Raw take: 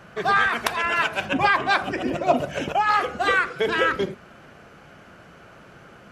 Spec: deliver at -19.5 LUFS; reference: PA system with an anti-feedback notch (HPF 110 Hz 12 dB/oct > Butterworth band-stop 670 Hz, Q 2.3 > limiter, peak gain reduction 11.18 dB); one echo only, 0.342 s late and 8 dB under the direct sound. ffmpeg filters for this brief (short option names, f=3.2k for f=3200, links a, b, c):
-af "highpass=110,asuperstop=centerf=670:order=8:qfactor=2.3,aecho=1:1:342:0.398,volume=6dB,alimiter=limit=-10.5dB:level=0:latency=1"